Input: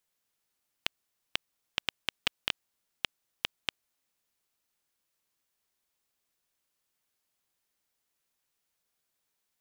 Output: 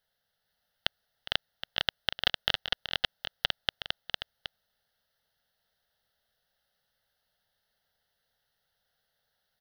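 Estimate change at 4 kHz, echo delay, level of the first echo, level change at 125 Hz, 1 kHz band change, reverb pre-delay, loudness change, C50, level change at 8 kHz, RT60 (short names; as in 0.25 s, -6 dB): +6.5 dB, 0.409 s, -15.0 dB, +8.5 dB, +6.0 dB, none, +5.0 dB, none, -4.5 dB, none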